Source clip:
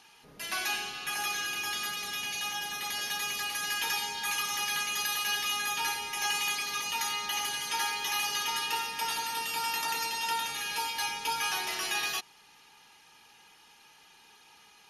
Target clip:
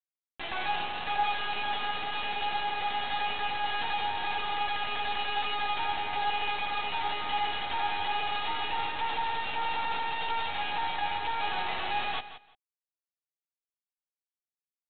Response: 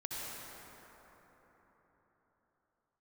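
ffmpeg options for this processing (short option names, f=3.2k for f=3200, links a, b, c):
-filter_complex "[0:a]asplit=2[a][b];[b]asoftclip=type=tanh:threshold=-35dB,volume=-7dB[c];[a][c]amix=inputs=2:normalize=0,afwtdn=0.0112,aresample=8000,acrusher=bits=4:dc=4:mix=0:aa=0.000001,aresample=44100,alimiter=level_in=3dB:limit=-24dB:level=0:latency=1:release=16,volume=-3dB,equalizer=f=800:t=o:w=0.3:g=13.5,aecho=1:1:172|344:0.224|0.0403,volume=3.5dB"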